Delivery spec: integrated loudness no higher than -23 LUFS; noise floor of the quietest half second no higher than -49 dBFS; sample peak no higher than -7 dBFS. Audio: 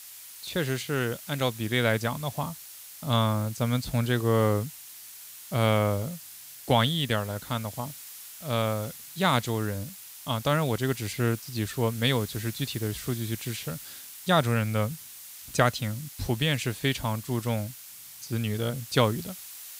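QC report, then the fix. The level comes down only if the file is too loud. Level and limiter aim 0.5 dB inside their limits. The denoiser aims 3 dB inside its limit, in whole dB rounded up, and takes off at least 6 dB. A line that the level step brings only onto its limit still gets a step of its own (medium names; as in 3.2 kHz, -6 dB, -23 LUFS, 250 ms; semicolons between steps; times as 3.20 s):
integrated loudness -28.0 LUFS: pass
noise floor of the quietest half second -46 dBFS: fail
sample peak -8.5 dBFS: pass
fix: noise reduction 6 dB, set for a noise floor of -46 dBFS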